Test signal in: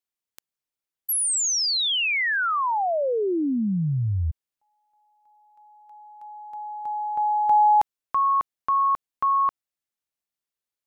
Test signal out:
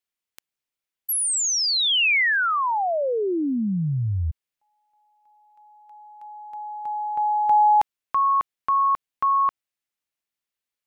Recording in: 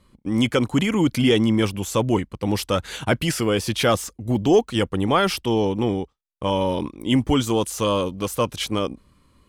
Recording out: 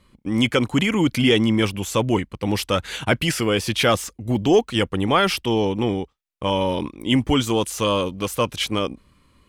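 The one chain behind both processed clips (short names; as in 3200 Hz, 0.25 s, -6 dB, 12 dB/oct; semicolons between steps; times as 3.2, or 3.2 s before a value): bell 2400 Hz +4.5 dB 1.3 oct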